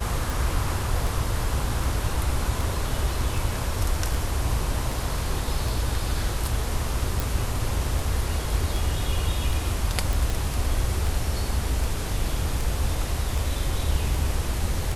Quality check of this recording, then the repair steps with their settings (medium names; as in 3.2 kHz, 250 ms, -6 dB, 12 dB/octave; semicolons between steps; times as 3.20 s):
tick 78 rpm
7.20 s: pop
10.13 s: pop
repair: de-click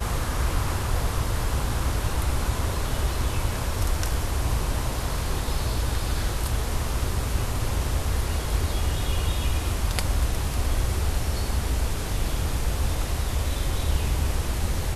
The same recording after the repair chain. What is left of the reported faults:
nothing left